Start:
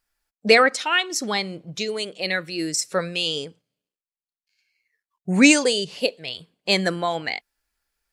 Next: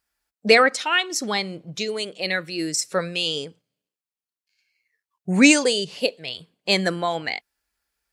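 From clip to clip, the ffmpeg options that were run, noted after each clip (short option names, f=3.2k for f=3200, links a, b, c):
-af "highpass=42"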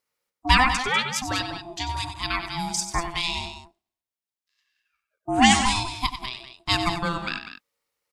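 -filter_complex "[0:a]aeval=exprs='val(0)*sin(2*PI*510*n/s)':c=same,asplit=2[a][b];[b]aecho=0:1:93.29|195.3:0.316|0.282[c];[a][c]amix=inputs=2:normalize=0"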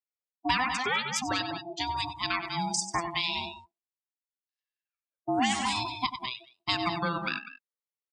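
-af "afftdn=nr=24:nf=-35,highpass=140,acompressor=threshold=-25dB:ratio=4"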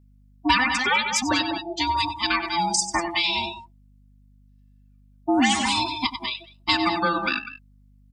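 -af "aecho=1:1:3.4:0.95,aeval=exprs='val(0)+0.00126*(sin(2*PI*50*n/s)+sin(2*PI*2*50*n/s)/2+sin(2*PI*3*50*n/s)/3+sin(2*PI*4*50*n/s)/4+sin(2*PI*5*50*n/s)/5)':c=same,volume=4.5dB"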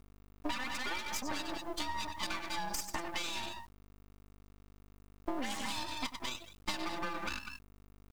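-af "aeval=exprs='max(val(0),0)':c=same,acompressor=threshold=-32dB:ratio=6,acrusher=bits=7:dc=4:mix=0:aa=0.000001,volume=-1dB"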